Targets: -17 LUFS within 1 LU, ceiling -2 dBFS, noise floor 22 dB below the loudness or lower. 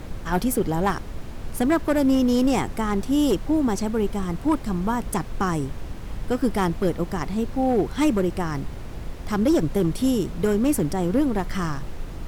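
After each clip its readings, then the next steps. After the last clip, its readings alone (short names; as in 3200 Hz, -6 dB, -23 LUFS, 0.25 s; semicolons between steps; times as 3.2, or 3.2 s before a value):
clipped 0.7%; flat tops at -13.5 dBFS; noise floor -35 dBFS; noise floor target -46 dBFS; loudness -23.5 LUFS; peak -13.5 dBFS; loudness target -17.0 LUFS
-> clip repair -13.5 dBFS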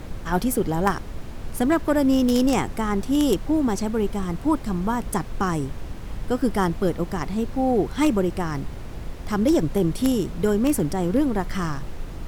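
clipped 0.0%; noise floor -35 dBFS; noise floor target -46 dBFS
-> noise print and reduce 11 dB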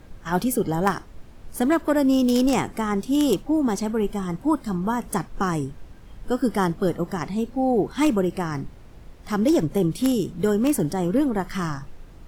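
noise floor -45 dBFS; noise floor target -46 dBFS
-> noise print and reduce 6 dB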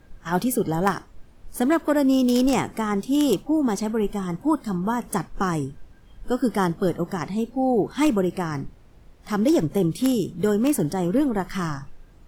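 noise floor -50 dBFS; loudness -23.5 LUFS; peak -4.5 dBFS; loudness target -17.0 LUFS
-> gain +6.5 dB; limiter -2 dBFS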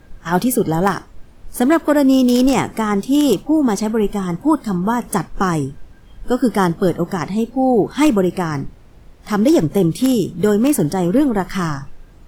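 loudness -17.0 LUFS; peak -2.0 dBFS; noise floor -44 dBFS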